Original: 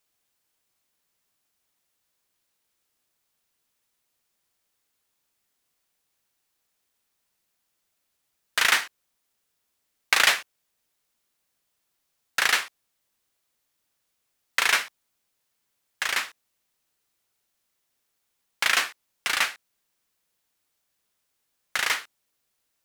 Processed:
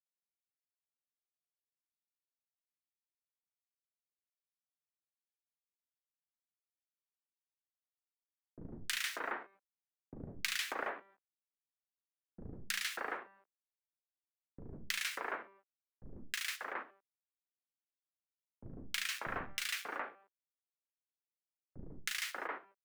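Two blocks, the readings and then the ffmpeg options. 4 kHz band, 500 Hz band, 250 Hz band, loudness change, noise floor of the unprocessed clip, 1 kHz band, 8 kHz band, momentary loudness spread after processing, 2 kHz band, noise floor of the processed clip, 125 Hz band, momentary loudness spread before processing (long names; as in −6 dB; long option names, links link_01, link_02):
−14.0 dB, −6.0 dB, 0.0 dB, −15.5 dB, −77 dBFS, −12.0 dB, −13.0 dB, 19 LU, −15.0 dB, below −85 dBFS, can't be measured, 12 LU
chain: -filter_complex "[0:a]bandreject=frequency=195.6:width_type=h:width=4,bandreject=frequency=391.2:width_type=h:width=4,bandreject=frequency=586.8:width_type=h:width=4,bandreject=frequency=782.4:width_type=h:width=4,bandreject=frequency=978:width_type=h:width=4,bandreject=frequency=1173.6:width_type=h:width=4,bandreject=frequency=1369.2:width_type=h:width=4,bandreject=frequency=1564.8:width_type=h:width=4,bandreject=frequency=1760.4:width_type=h:width=4,bandreject=frequency=1956:width_type=h:width=4,bandreject=frequency=2151.6:width_type=h:width=4,bandreject=frequency=2347.2:width_type=h:width=4,bandreject=frequency=2542.8:width_type=h:width=4,bandreject=frequency=2738.4:width_type=h:width=4,bandreject=frequency=2934:width_type=h:width=4,bandreject=frequency=3129.6:width_type=h:width=4,bandreject=frequency=3325.2:width_type=h:width=4,bandreject=frequency=3520.8:width_type=h:width=4,bandreject=frequency=3716.4:width_type=h:width=4,bandreject=frequency=3912:width_type=h:width=4,bandreject=frequency=4107.6:width_type=h:width=4,acrusher=bits=6:dc=4:mix=0:aa=0.000001,acrossover=split=290|1500[link_01][link_02][link_03];[link_03]adelay=320[link_04];[link_02]adelay=590[link_05];[link_01][link_05][link_04]amix=inputs=3:normalize=0,acrossover=split=410[link_06][link_07];[link_07]acompressor=threshold=-43dB:ratio=3[link_08];[link_06][link_08]amix=inputs=2:normalize=0,aeval=exprs='0.158*(cos(1*acos(clip(val(0)/0.158,-1,1)))-cos(1*PI/2))+0.00141*(cos(8*acos(clip(val(0)/0.158,-1,1)))-cos(8*PI/2))':channel_layout=same,volume=2dB"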